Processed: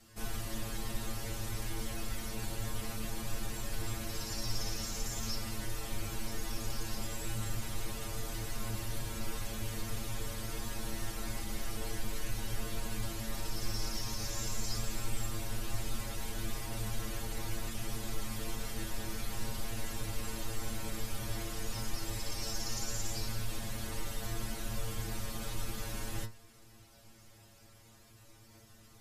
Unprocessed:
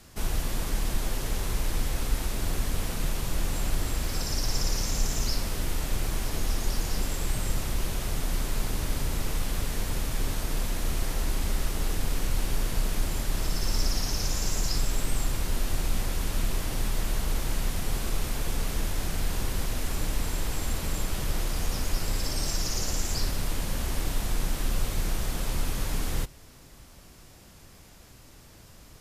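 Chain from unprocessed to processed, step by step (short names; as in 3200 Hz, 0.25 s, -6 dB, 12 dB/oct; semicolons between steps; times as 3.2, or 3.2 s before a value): metallic resonator 110 Hz, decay 0.29 s, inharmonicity 0.002; gain +3 dB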